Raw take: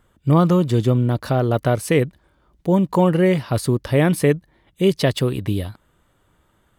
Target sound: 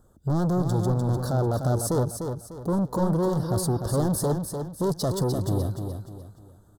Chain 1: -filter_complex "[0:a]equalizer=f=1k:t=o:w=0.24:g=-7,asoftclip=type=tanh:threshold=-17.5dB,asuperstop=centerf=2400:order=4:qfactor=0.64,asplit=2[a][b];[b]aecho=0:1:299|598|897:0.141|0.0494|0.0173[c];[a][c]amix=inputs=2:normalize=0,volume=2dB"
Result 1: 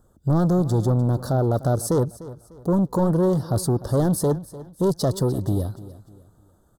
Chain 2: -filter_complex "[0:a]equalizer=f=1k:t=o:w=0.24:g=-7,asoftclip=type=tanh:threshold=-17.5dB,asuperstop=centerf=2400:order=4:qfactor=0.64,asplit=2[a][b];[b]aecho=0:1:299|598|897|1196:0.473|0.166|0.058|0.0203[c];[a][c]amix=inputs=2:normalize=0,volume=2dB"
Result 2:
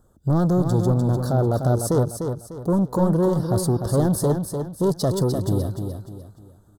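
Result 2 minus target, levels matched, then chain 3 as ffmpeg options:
soft clip: distortion -4 dB
-filter_complex "[0:a]equalizer=f=1k:t=o:w=0.24:g=-7,asoftclip=type=tanh:threshold=-23.5dB,asuperstop=centerf=2400:order=4:qfactor=0.64,asplit=2[a][b];[b]aecho=0:1:299|598|897|1196:0.473|0.166|0.058|0.0203[c];[a][c]amix=inputs=2:normalize=0,volume=2dB"

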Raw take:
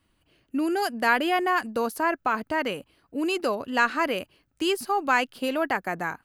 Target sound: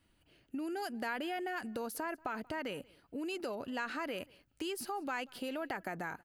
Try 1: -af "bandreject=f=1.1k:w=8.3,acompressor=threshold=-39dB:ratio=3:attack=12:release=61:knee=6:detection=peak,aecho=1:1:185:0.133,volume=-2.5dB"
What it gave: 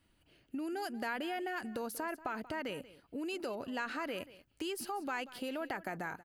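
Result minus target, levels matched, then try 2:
echo-to-direct +8 dB
-af "bandreject=f=1.1k:w=8.3,acompressor=threshold=-39dB:ratio=3:attack=12:release=61:knee=6:detection=peak,aecho=1:1:185:0.0531,volume=-2.5dB"

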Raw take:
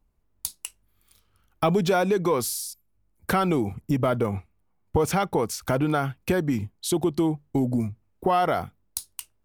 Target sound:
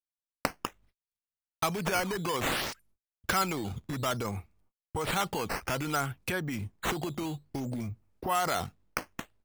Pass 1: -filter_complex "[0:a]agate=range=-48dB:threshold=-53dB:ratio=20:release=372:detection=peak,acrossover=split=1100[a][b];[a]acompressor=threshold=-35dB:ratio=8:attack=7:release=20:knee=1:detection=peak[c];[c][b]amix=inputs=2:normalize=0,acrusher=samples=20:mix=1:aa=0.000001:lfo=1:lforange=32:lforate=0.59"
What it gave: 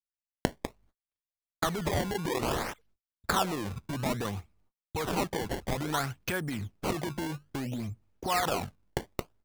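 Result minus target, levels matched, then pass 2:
decimation with a swept rate: distortion +8 dB
-filter_complex "[0:a]agate=range=-48dB:threshold=-53dB:ratio=20:release=372:detection=peak,acrossover=split=1100[a][b];[a]acompressor=threshold=-35dB:ratio=8:attack=7:release=20:knee=1:detection=peak[c];[c][b]amix=inputs=2:normalize=0,acrusher=samples=7:mix=1:aa=0.000001:lfo=1:lforange=11.2:lforate=0.59"

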